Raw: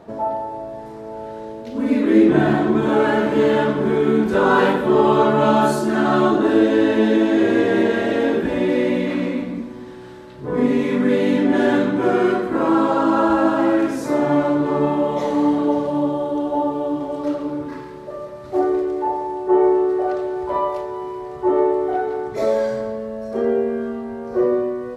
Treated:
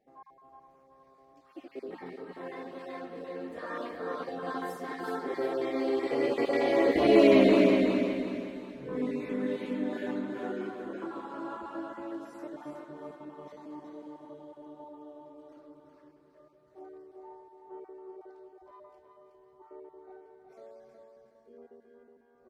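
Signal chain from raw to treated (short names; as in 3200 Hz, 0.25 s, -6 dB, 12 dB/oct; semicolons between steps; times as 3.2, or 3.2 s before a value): random spectral dropouts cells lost 23%; Doppler pass-by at 8.13, 30 m/s, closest 10 m; bell 90 Hz -10 dB 0.37 oct; notches 50/100/150/200 Hz; feedback echo 0.409 s, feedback 37%, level -5 dB; varispeed +11%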